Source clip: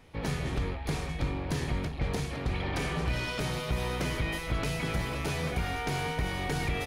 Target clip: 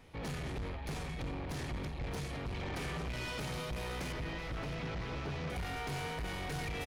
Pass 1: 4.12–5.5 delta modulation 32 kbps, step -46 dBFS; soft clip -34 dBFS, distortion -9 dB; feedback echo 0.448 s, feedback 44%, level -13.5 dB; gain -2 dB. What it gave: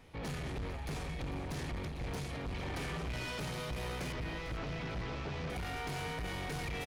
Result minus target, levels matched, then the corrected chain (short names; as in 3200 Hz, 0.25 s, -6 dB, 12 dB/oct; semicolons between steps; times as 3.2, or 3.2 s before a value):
echo 0.175 s early
4.12–5.5 delta modulation 32 kbps, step -46 dBFS; soft clip -34 dBFS, distortion -9 dB; feedback echo 0.623 s, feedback 44%, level -13.5 dB; gain -2 dB